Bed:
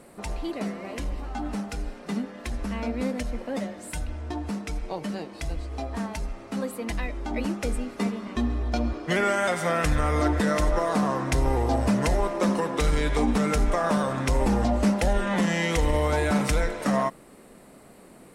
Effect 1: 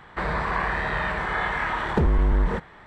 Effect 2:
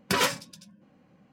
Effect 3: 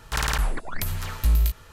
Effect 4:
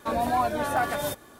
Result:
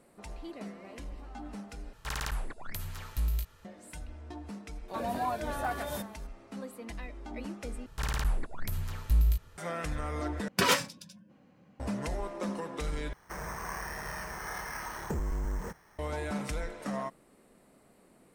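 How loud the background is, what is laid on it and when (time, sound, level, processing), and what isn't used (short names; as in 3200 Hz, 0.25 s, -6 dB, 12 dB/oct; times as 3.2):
bed -11.5 dB
1.93 replace with 3 -10.5 dB
4.88 add 4 -8 dB
7.86 replace with 3 -11.5 dB + low shelf 450 Hz +7 dB
10.48 replace with 2 -1 dB
13.13 replace with 1 -13 dB + careless resampling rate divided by 6×, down filtered, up hold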